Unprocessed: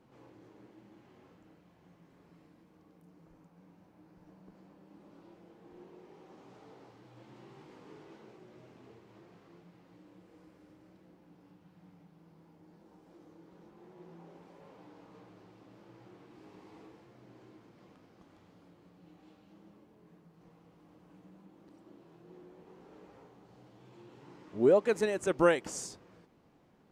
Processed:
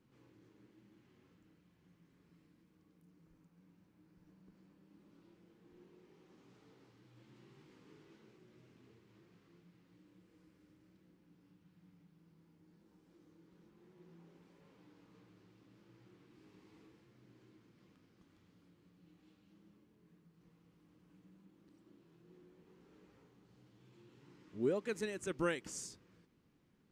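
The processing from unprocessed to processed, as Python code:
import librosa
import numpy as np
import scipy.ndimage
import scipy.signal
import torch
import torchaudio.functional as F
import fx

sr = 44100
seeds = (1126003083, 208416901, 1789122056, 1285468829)

y = fx.peak_eq(x, sr, hz=710.0, db=-12.5, octaves=1.3)
y = y * 10.0 ** (-5.0 / 20.0)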